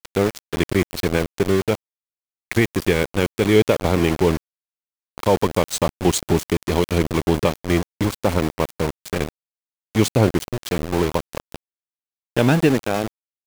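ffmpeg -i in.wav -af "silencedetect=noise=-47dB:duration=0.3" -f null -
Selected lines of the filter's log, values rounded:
silence_start: 1.75
silence_end: 2.51 | silence_duration: 0.76
silence_start: 4.37
silence_end: 5.18 | silence_duration: 0.81
silence_start: 9.29
silence_end: 9.95 | silence_duration: 0.66
silence_start: 11.56
silence_end: 12.37 | silence_duration: 0.81
silence_start: 13.08
silence_end: 13.47 | silence_duration: 0.39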